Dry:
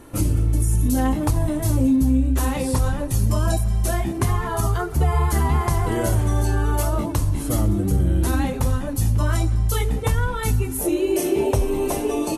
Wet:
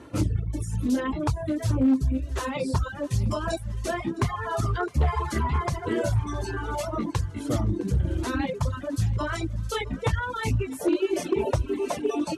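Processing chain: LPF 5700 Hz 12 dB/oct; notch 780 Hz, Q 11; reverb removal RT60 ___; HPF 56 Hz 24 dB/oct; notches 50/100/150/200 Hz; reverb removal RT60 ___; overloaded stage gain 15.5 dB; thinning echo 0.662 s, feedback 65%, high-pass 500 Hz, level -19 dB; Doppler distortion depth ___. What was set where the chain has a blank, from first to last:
1.6 s, 0.9 s, 0.14 ms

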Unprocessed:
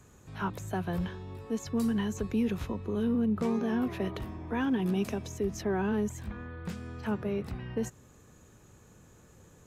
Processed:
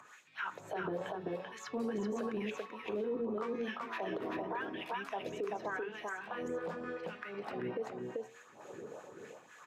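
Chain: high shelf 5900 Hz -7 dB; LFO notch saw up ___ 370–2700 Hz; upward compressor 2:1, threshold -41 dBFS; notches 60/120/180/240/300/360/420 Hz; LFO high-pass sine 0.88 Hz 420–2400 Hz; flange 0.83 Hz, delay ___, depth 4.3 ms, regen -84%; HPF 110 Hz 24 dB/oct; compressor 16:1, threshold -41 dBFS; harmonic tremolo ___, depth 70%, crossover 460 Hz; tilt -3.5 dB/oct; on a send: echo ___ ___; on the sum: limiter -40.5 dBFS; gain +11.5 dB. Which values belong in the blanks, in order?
7.9 Hz, 8.5 ms, 3.4 Hz, 0.387 s, -4 dB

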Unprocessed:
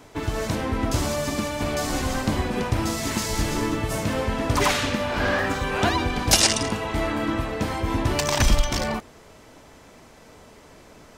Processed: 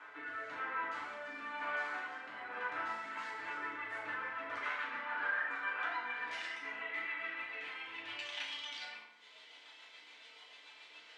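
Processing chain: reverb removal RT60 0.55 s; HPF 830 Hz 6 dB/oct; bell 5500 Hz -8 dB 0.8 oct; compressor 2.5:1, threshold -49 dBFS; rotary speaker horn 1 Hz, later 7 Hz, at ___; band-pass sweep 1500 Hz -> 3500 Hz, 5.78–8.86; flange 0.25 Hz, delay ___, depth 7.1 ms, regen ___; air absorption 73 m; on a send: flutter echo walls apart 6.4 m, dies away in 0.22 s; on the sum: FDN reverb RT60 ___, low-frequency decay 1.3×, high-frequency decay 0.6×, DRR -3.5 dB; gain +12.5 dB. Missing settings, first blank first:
2.83, 9.3 ms, +37%, 1 s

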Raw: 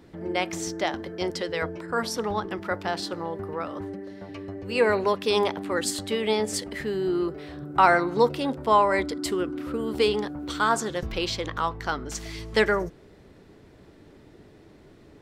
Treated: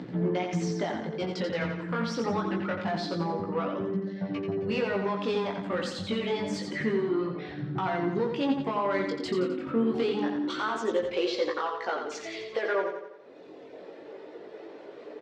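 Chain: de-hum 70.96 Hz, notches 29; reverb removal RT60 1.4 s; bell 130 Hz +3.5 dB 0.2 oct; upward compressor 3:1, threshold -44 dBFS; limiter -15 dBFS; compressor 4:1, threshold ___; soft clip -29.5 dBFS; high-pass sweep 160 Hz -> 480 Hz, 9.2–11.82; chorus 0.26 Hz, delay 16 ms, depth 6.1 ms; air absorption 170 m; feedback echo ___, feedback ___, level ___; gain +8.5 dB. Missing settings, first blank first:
-30 dBFS, 87 ms, 48%, -6 dB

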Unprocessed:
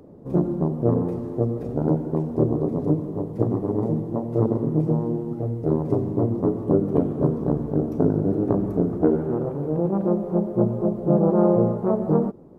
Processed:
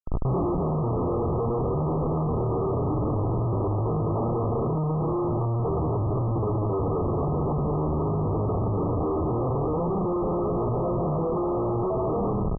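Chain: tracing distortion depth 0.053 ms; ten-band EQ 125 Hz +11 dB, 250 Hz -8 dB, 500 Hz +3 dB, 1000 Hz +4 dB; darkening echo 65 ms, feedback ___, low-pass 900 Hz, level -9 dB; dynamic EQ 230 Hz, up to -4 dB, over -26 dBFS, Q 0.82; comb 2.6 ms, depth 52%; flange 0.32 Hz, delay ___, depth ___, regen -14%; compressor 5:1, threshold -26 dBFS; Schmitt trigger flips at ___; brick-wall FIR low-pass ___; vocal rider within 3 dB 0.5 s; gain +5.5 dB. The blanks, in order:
68%, 9.1 ms, 4.1 ms, -40 dBFS, 1300 Hz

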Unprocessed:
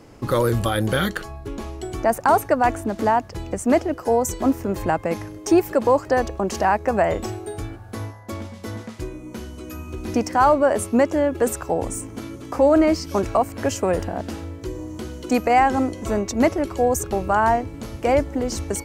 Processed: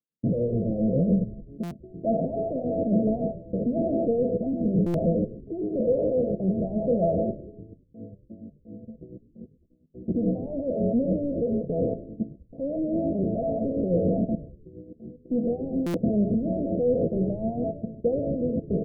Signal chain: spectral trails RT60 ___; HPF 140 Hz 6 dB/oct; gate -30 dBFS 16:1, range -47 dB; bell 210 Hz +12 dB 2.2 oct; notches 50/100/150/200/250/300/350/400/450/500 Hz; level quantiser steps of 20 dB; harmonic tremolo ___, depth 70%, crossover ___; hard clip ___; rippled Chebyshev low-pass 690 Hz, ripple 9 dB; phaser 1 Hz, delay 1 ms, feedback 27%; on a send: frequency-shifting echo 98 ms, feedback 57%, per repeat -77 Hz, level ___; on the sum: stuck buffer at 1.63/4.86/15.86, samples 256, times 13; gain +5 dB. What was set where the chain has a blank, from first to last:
1.01 s, 7.1 Hz, 690 Hz, -22 dBFS, -17.5 dB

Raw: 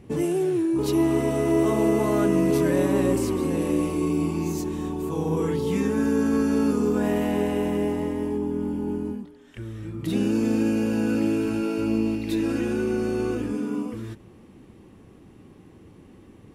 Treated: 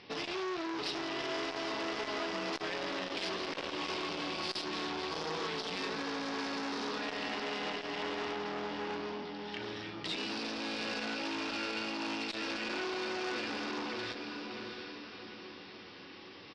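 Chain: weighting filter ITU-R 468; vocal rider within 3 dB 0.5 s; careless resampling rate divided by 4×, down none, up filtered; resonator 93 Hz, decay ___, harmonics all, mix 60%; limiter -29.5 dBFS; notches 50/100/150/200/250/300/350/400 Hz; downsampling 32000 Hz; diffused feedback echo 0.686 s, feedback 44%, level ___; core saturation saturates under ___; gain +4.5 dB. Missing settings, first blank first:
0.15 s, -6.5 dB, 1900 Hz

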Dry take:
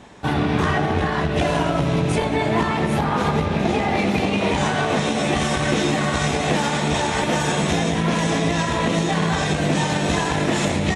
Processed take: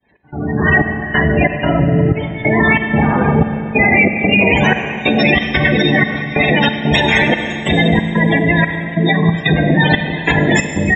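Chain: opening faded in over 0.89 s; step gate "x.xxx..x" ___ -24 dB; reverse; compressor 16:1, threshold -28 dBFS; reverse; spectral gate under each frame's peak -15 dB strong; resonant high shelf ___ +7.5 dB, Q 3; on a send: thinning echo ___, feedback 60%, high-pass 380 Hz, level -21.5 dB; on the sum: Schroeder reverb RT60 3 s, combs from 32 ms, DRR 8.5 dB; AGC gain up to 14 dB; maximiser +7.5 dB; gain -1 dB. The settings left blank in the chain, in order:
92 bpm, 1600 Hz, 74 ms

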